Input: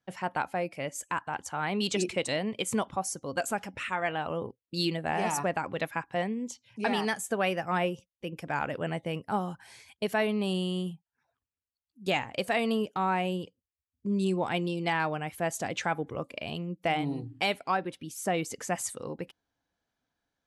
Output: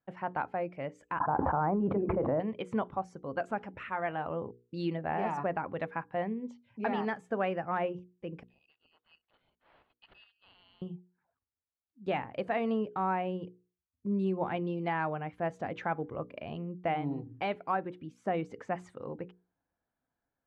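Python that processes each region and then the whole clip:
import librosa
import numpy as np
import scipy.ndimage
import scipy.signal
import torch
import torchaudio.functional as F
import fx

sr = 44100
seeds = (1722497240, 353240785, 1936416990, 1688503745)

y = fx.chain(x, sr, fx.lowpass(hz=1200.0, slope=24),
    fx.env_flatten(amount_pct=100), at=(1.2, 2.4))
y = fx.chain(y, sr, fx.level_steps(step_db=9),
    fx.brickwall_highpass(low_hz=2500.0),
    fx.resample_linear(factor=6), at=(8.43, 10.82))
y = scipy.signal.sosfilt(scipy.signal.butter(2, 1600.0, 'lowpass', fs=sr, output='sos'), y)
y = fx.hum_notches(y, sr, base_hz=60, count=8)
y = y * 10.0 ** (-2.0 / 20.0)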